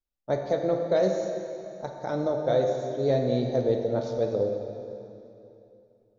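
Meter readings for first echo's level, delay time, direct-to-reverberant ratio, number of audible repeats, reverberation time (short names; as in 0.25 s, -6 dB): none, none, 2.5 dB, none, 2.9 s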